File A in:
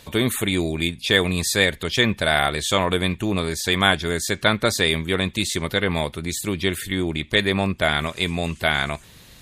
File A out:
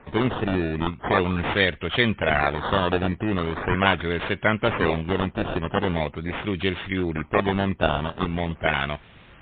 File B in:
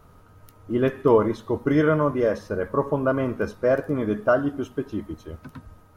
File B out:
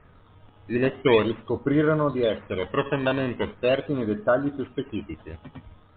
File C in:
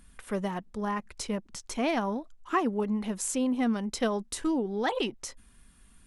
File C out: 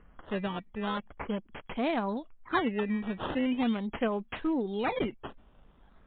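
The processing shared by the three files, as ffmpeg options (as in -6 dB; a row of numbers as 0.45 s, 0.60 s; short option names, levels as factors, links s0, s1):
-af "acrusher=samples=14:mix=1:aa=0.000001:lfo=1:lforange=14:lforate=0.41,volume=0.891" -ar 8000 -c:a libmp3lame -b:a 64k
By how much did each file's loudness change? -3.0 LU, -1.5 LU, -1.5 LU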